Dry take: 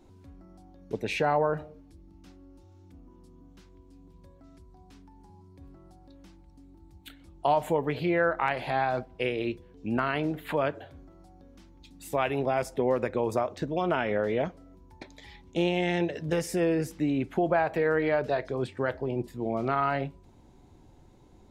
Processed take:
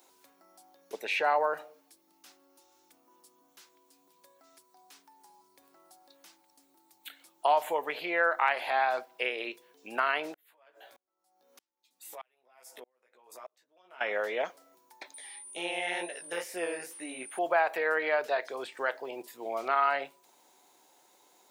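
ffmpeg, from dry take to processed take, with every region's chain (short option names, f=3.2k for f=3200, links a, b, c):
-filter_complex "[0:a]asettb=1/sr,asplit=3[a][b][c];[a]atrim=end=10.344[d];[b]atrim=start=10.34:end=14.01,asetpts=PTS-STARTPTS,afade=t=in:d=0.004:c=qsin,afade=t=out:st=3.666:d=0.004:c=qsin,acompressor=threshold=-37dB:ratio=12:attack=3.2:release=140:knee=1:detection=peak,asplit=2[e][f];[f]adelay=16,volume=-4dB[g];[e][g]amix=inputs=2:normalize=0,atrim=end_sample=161847,aeval=exprs='val(0)*pow(10,-38*if(lt(mod(-1.6*n/s,1),2*abs(-1.6)/1000),1-mod(-1.6*n/s,1)/(2*abs(-1.6)/1000),(mod(-1.6*n/s,1)-2*abs(-1.6)/1000)/(1-2*abs(-1.6)/1000))/20)':c=same[h];[c]atrim=start=14.006[i];[d][h]acrossfade=d=0.004:c1=hsin:c2=qsin[j];[j][i]acrossfade=d=0.004:c1=qsin:c2=hsin,asettb=1/sr,asplit=3[k][l][m];[k]atrim=end=15.144[n];[l]atrim=start=15.14:end=17.39,asetpts=PTS-STARTPTS,afade=t=in:d=0.004:c=qsin,afade=t=out:st=2.246:d=0.004:c=qsin,aeval=exprs='val(0)+0.00447*sin(2*PI*9300*n/s)':c=same,flanger=delay=16.5:depth=7.6:speed=2.1[o];[m]atrim=start=17.386[p];[n][o]acrossfade=d=0.004:c1=hsin:c2=qsin[q];[q][p]acrossfade=d=0.004:c1=qsin:c2=hsin,acrossover=split=3500[r][s];[s]acompressor=threshold=-59dB:ratio=4:attack=1:release=60[t];[r][t]amix=inputs=2:normalize=0,highpass=620,aemphasis=mode=production:type=bsi,volume=2dB"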